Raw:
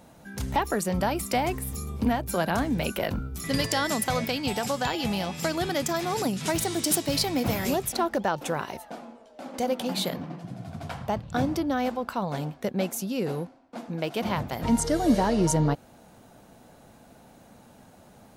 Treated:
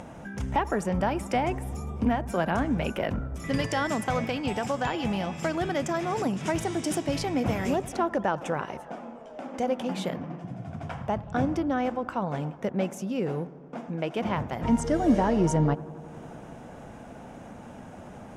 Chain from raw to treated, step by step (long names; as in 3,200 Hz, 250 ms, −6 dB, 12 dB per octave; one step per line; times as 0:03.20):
parametric band 4,200 Hz −13 dB 0.44 octaves
upward compression, threshold −33 dBFS
high-frequency loss of the air 78 metres
on a send: bucket-brigade delay 90 ms, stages 1,024, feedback 81%, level −20 dB